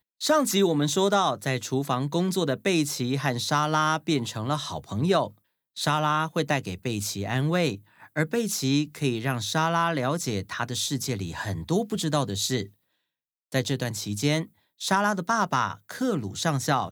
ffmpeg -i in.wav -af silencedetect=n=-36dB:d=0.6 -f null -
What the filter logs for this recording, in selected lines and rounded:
silence_start: 12.66
silence_end: 13.52 | silence_duration: 0.86